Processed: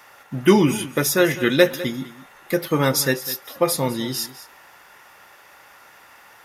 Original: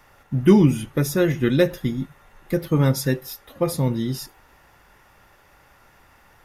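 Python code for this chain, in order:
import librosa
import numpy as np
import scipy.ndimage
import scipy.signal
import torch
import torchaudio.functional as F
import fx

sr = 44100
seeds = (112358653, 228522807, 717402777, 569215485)

p1 = fx.highpass(x, sr, hz=760.0, slope=6)
p2 = p1 + fx.echo_single(p1, sr, ms=203, db=-16.0, dry=0)
y = p2 * librosa.db_to_amplitude(8.5)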